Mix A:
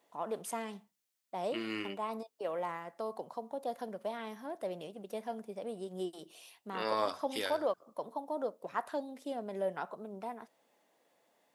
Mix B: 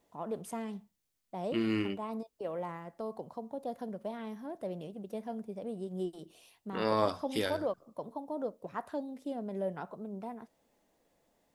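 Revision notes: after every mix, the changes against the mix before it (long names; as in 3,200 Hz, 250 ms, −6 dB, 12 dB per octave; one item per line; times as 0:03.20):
first voice −5.5 dB
master: remove high-pass filter 740 Hz 6 dB per octave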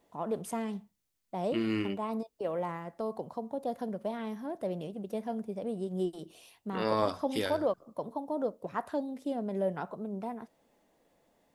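first voice +4.0 dB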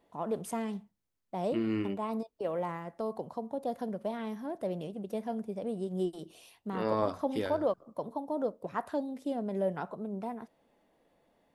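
second voice: add high-shelf EQ 2,100 Hz −11 dB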